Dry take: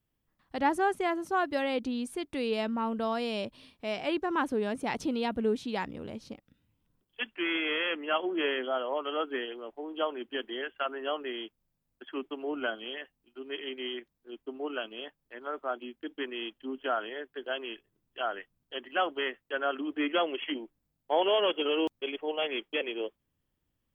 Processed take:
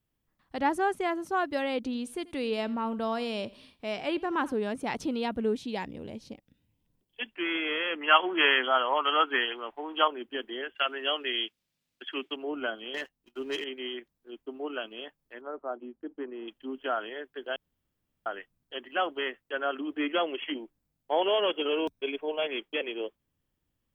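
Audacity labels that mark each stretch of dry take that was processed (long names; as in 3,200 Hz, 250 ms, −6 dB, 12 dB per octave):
1.760000	4.550000	repeating echo 85 ms, feedback 34%, level −20.5 dB
5.570000	7.340000	parametric band 1,300 Hz −8.5 dB 0.56 octaves
8.010000	10.080000	flat-topped bell 1,700 Hz +11 dB 2.4 octaves
10.750000	12.360000	meter weighting curve D
12.940000	13.640000	leveller curve on the samples passes 2
15.410000	16.480000	low-pass filter 1,000 Hz
17.560000	18.260000	fill with room tone
21.720000	22.470000	EQ curve with evenly spaced ripples crests per octave 1.6, crest to trough 7 dB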